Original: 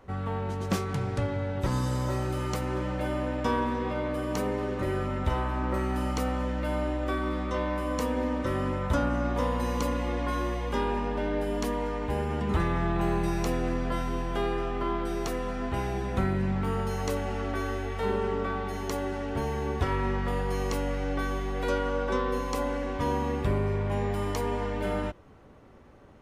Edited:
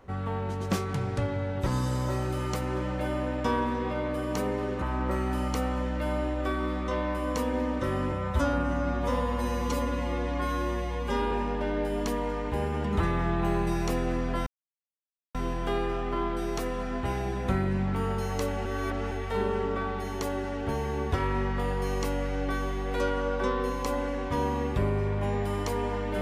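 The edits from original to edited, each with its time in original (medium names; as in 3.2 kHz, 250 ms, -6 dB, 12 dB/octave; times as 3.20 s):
4.82–5.45 s: delete
8.75–10.88 s: stretch 1.5×
14.03 s: insert silence 0.88 s
17.34–17.80 s: reverse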